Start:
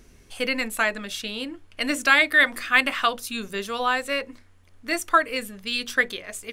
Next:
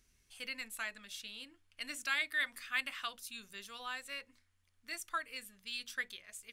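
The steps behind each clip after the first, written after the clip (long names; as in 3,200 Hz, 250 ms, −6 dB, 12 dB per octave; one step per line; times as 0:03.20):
guitar amp tone stack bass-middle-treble 5-5-5
level −6.5 dB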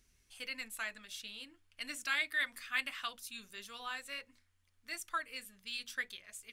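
flanger 1.6 Hz, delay 0.2 ms, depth 3.8 ms, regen −69%
level +4.5 dB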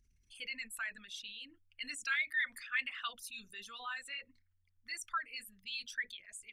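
spectral envelope exaggerated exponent 2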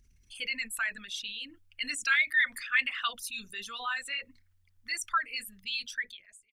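fade-out on the ending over 0.88 s
level +8.5 dB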